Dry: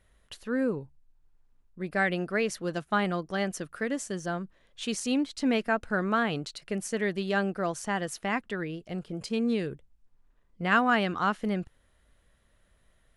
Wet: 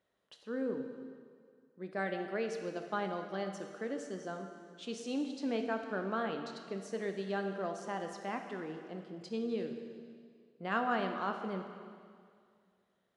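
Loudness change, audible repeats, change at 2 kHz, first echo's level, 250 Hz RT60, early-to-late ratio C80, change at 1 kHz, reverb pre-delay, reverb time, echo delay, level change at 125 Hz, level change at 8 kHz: -8.5 dB, no echo, -11.5 dB, no echo, 2.2 s, 7.5 dB, -7.5 dB, 5 ms, 2.1 s, no echo, -11.5 dB, -14.5 dB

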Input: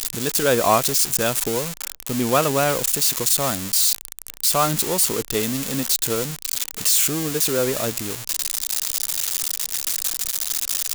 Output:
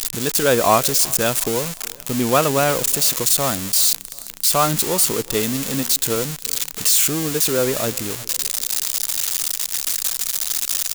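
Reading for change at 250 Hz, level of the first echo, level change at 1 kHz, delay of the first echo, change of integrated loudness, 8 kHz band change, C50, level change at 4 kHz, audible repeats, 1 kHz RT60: +2.0 dB, -23.0 dB, +2.0 dB, 368 ms, +2.0 dB, +2.0 dB, no reverb, +2.0 dB, 2, no reverb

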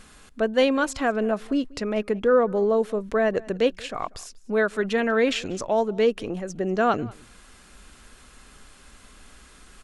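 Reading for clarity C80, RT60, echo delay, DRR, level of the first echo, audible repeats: no reverb, no reverb, 189 ms, no reverb, -23.5 dB, 1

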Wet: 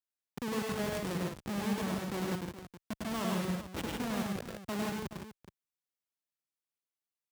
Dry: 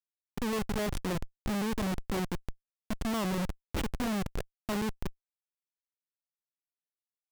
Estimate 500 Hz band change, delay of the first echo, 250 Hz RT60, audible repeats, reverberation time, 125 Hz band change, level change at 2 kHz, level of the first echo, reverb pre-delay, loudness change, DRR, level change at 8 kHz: -1.5 dB, 101 ms, no reverb, 3, no reverb, -2.0 dB, -1.0 dB, -3.0 dB, no reverb, -2.0 dB, no reverb, -1.0 dB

